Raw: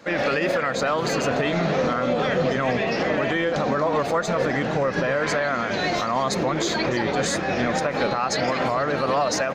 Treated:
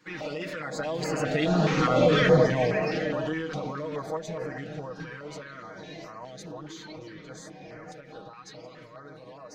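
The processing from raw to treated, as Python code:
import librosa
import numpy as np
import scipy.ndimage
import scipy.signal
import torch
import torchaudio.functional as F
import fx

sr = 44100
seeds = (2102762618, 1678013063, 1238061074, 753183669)

y = fx.doppler_pass(x, sr, speed_mps=13, closest_m=4.4, pass_at_s=2.08)
y = y + 0.8 * np.pad(y, (int(6.4 * sr / 1000.0), 0))[:len(y)]
y = fx.filter_held_notch(y, sr, hz=4.8, low_hz=630.0, high_hz=3500.0)
y = y * 10.0 ** (2.5 / 20.0)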